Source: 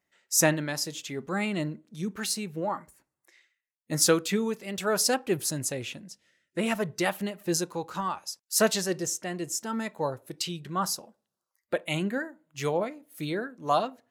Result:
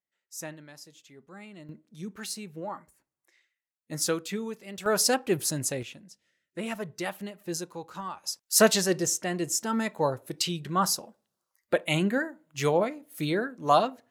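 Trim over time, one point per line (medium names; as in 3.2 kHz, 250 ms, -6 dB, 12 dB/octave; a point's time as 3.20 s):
-17 dB
from 1.69 s -6 dB
from 4.86 s +1 dB
from 5.83 s -6 dB
from 8.24 s +3.5 dB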